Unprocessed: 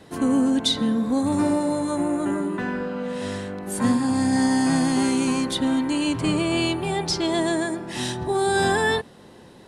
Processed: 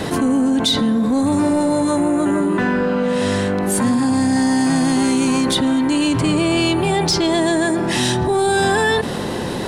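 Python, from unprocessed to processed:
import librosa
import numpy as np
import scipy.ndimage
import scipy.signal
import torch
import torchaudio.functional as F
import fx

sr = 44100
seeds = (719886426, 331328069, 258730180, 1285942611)

p1 = 10.0 ** (-22.5 / 20.0) * np.tanh(x / 10.0 ** (-22.5 / 20.0))
p2 = x + (p1 * librosa.db_to_amplitude(-5.0))
y = fx.env_flatten(p2, sr, amount_pct=70)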